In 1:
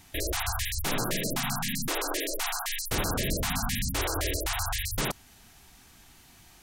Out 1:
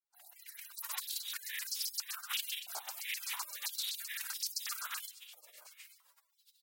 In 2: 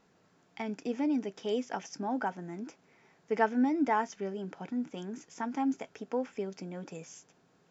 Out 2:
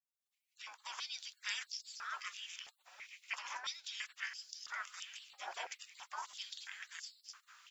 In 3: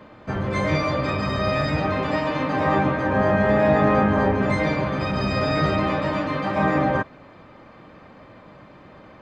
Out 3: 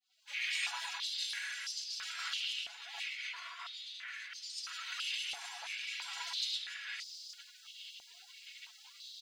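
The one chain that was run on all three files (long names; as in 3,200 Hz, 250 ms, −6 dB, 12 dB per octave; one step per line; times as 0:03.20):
fade in at the beginning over 1.13 s
compressor whose output falls as the input rises −29 dBFS, ratio −1
high-shelf EQ 3,500 Hz +4 dB
on a send: single-tap delay 871 ms −15 dB
on the sum: gate on every frequency bin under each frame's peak −30 dB weak
high-pass on a step sequencer 3 Hz 760–5,000 Hz
level +8 dB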